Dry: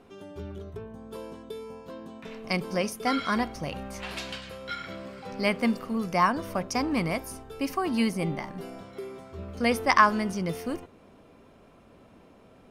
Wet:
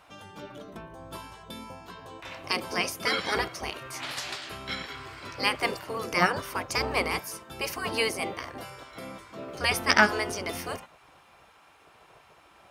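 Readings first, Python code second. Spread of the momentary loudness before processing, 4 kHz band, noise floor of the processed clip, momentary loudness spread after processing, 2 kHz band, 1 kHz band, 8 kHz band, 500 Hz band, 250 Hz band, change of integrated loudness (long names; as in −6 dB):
17 LU, +6.0 dB, −58 dBFS, 18 LU, +3.5 dB, −3.0 dB, +5.0 dB, −1.5 dB, −8.5 dB, −0.5 dB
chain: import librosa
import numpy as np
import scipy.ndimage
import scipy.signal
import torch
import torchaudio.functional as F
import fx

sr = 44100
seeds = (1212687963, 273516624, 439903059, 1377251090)

y = fx.spec_gate(x, sr, threshold_db=-10, keep='weak')
y = scipy.signal.sosfilt(scipy.signal.butter(2, 53.0, 'highpass', fs=sr, output='sos'), y)
y = y * librosa.db_to_amplitude(6.5)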